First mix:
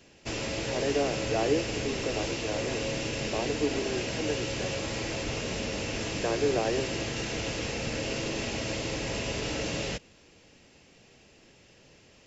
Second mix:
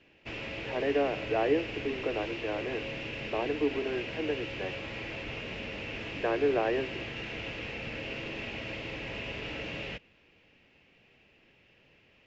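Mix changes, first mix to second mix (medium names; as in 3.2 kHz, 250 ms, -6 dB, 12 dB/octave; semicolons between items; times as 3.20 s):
background -7.5 dB; master: add resonant low-pass 2.6 kHz, resonance Q 2.2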